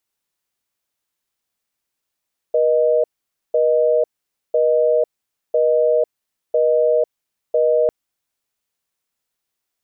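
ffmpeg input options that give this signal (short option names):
-f lavfi -i "aevalsrc='0.168*(sin(2*PI*480*t)+sin(2*PI*620*t))*clip(min(mod(t,1),0.5-mod(t,1))/0.005,0,1)':d=5.35:s=44100"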